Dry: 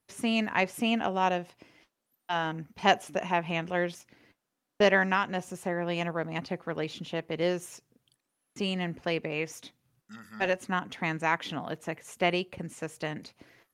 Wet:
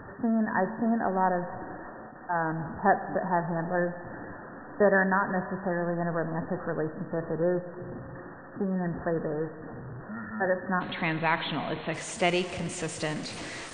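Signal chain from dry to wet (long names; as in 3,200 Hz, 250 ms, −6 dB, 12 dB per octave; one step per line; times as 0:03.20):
converter with a step at zero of −33.5 dBFS
linear-phase brick-wall low-pass 1,900 Hz, from 0:10.80 4,300 Hz, from 0:11.93 9,600 Hz
four-comb reverb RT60 2.8 s, combs from 28 ms, DRR 11 dB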